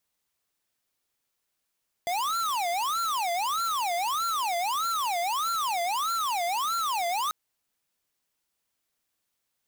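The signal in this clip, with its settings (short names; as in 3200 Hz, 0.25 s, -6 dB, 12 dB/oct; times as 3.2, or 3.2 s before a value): siren wail 685–1370 Hz 1.6/s square -28 dBFS 5.24 s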